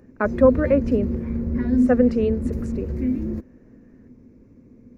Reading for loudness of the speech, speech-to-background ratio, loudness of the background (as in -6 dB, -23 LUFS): -20.5 LUFS, 4.5 dB, -25.0 LUFS